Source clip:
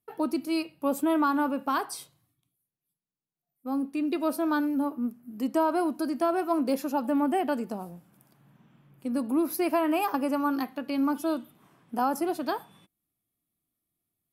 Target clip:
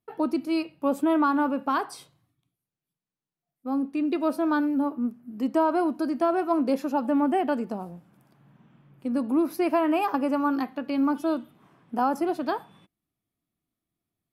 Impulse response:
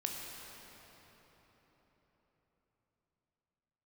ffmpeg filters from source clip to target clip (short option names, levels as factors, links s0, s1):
-af "aemphasis=mode=reproduction:type=50kf,volume=1.33"